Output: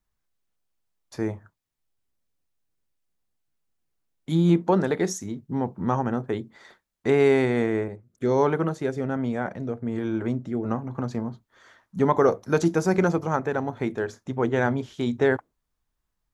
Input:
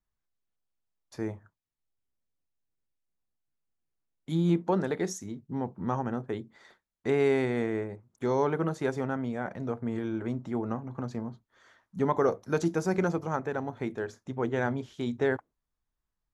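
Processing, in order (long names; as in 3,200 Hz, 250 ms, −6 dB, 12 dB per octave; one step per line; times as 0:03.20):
0:07.88–0:10.65: rotating-speaker cabinet horn 1.2 Hz
level +6 dB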